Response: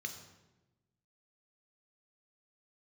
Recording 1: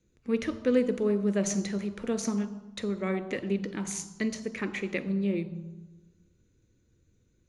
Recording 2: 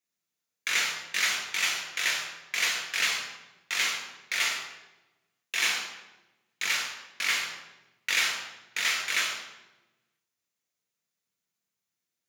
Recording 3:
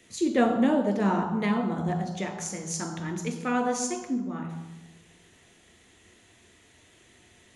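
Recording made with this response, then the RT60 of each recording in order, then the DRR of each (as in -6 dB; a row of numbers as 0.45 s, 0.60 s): 3; 1.1 s, 1.1 s, 1.1 s; 11.5 dB, -0.5 dB, 5.0 dB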